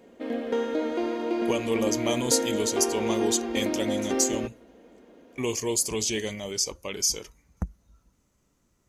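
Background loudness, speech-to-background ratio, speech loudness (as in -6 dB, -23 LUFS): -29.0 LUFS, 1.0 dB, -28.0 LUFS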